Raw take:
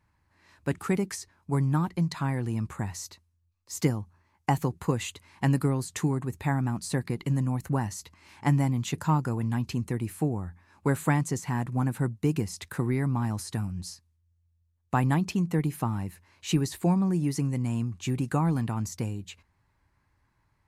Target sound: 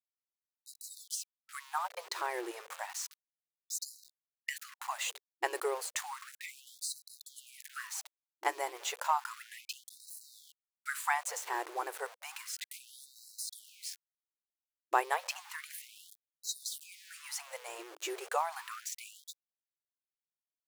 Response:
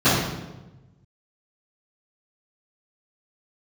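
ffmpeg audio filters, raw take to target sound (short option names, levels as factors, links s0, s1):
-filter_complex "[0:a]asplit=2[s0][s1];[s1]adelay=205,lowpass=f=3400:p=1,volume=0.0708,asplit=2[s2][s3];[s3]adelay=205,lowpass=f=3400:p=1,volume=0.42,asplit=2[s4][s5];[s5]adelay=205,lowpass=f=3400:p=1,volume=0.42[s6];[s0][s2][s4][s6]amix=inputs=4:normalize=0,aeval=exprs='val(0)*gte(abs(val(0)),0.01)':c=same,afftfilt=real='re*gte(b*sr/1024,320*pow(3900/320,0.5+0.5*sin(2*PI*0.32*pts/sr)))':imag='im*gte(b*sr/1024,320*pow(3900/320,0.5+0.5*sin(2*PI*0.32*pts/sr)))':win_size=1024:overlap=0.75"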